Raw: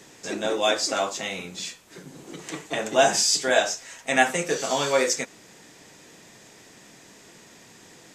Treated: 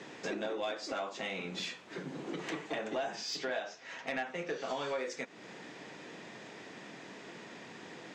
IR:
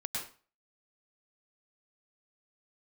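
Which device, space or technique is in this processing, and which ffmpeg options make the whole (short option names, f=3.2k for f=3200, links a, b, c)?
AM radio: -filter_complex "[0:a]asettb=1/sr,asplit=3[a][b][c];[a]atrim=end=3.154[d];[b]atrim=start=3.15:end=4.68,asetpts=PTS-STARTPTS,afade=t=in:d=0.004:c=qsin,afade=t=out:st=1.526:d=0.004:c=qsin,lowpass=f=6.6k:w=0.5412,lowpass=f=6.6k:w=1.3066[e];[c]atrim=start=4.676[f];[d][e]acrossfade=d=0.004:c1=hsin:c2=qsin[g];[g][f]acrossfade=d=0.004:c1=qsin:c2=hsin,highpass=160,lowpass=3.2k,acompressor=threshold=-38dB:ratio=5,asoftclip=type=tanh:threshold=-29.5dB,volume=3.5dB"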